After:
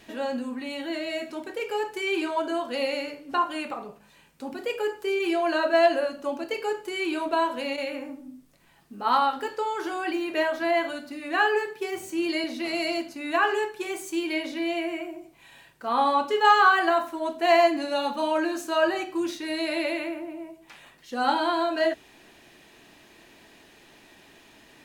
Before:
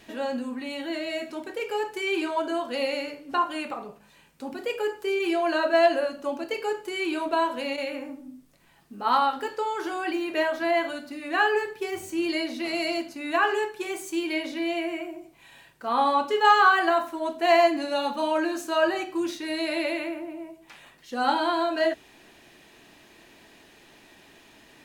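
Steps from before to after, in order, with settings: 11.45–12.44 s: high-pass 130 Hz 12 dB/octave

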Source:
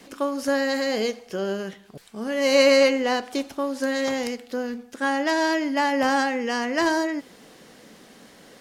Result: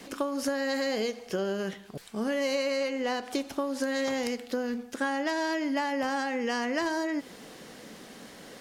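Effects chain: compression 12:1, threshold -28 dBFS, peak gain reduction 15.5 dB; trim +2 dB

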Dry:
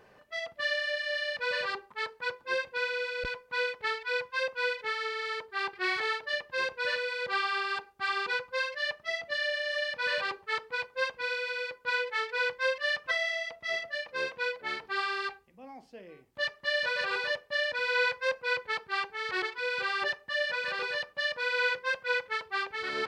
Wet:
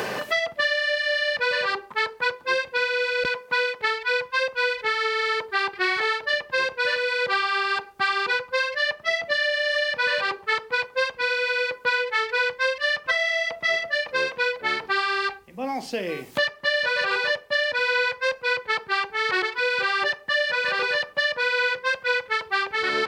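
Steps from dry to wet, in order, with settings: three bands compressed up and down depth 100%; trim +7 dB

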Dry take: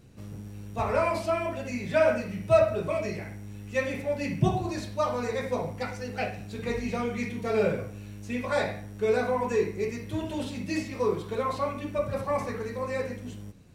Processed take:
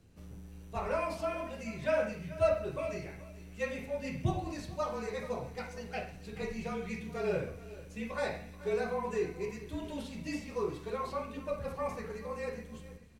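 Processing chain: feedback echo behind a high-pass 144 ms, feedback 78%, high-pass 2.5 kHz, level -18 dB; frequency shift -30 Hz; speed mistake 24 fps film run at 25 fps; delay 433 ms -17 dB; trim -7.5 dB

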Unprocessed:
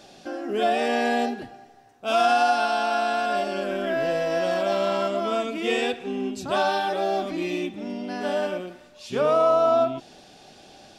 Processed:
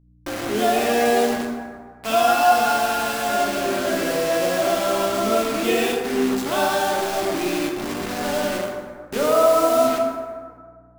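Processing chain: 6.96–9.24 s: partial rectifier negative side -3 dB; resonant low shelf 160 Hz -9 dB, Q 1.5; bit crusher 5-bit; hum 60 Hz, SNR 32 dB; plate-style reverb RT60 1.8 s, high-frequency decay 0.45×, DRR 0 dB

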